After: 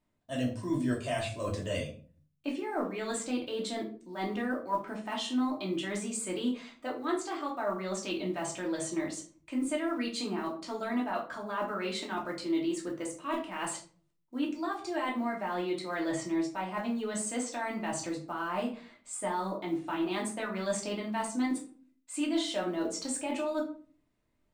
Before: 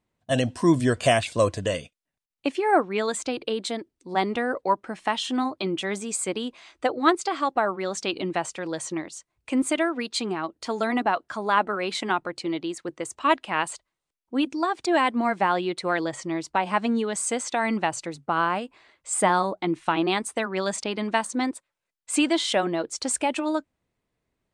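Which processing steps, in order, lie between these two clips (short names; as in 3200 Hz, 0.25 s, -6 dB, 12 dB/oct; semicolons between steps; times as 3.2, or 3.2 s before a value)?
block floating point 7-bit; reverse; compressor 6:1, threshold -31 dBFS, peak gain reduction 16.5 dB; reverse; shoebox room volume 300 m³, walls furnished, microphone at 2.7 m; gain -5 dB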